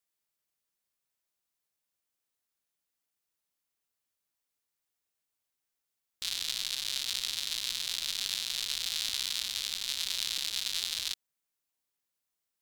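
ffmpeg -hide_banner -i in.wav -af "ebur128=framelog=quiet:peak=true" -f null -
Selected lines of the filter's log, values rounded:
Integrated loudness:
  I:         -31.7 LUFS
  Threshold: -41.7 LUFS
Loudness range:
  LRA:         7.5 LU
  Threshold: -52.9 LUFS
  LRA low:   -38.8 LUFS
  LRA high:  -31.3 LUFS
True peak:
  Peak:      -12.5 dBFS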